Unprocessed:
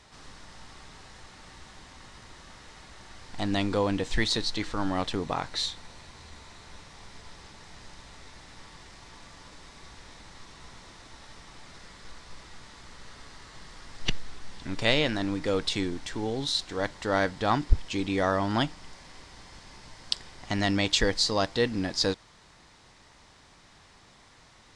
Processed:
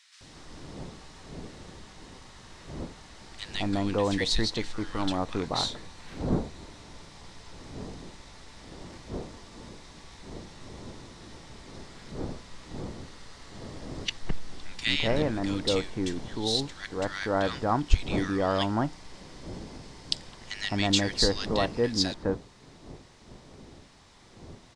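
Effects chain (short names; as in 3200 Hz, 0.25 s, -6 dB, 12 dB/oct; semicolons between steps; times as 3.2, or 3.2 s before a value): wind noise 340 Hz -42 dBFS; bands offset in time highs, lows 0.21 s, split 1600 Hz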